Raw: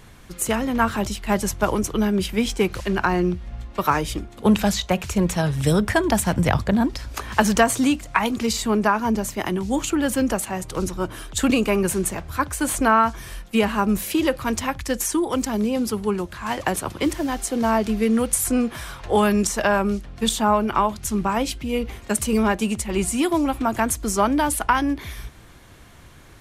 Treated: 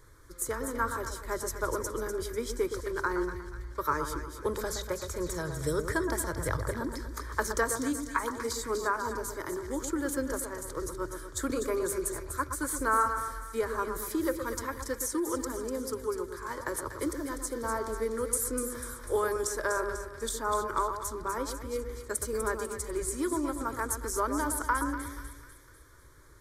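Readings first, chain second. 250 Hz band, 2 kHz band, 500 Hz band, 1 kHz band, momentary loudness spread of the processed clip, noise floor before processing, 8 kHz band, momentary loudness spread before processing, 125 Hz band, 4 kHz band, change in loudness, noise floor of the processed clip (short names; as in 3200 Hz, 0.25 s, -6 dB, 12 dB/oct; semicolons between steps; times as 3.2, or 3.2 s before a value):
-15.0 dB, -9.0 dB, -8.5 dB, -9.5 dB, 7 LU, -45 dBFS, -7.5 dB, 7 LU, -13.5 dB, -14.5 dB, -10.5 dB, -50 dBFS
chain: fixed phaser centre 740 Hz, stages 6; split-band echo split 1700 Hz, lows 0.119 s, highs 0.247 s, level -7.5 dB; gain -7.5 dB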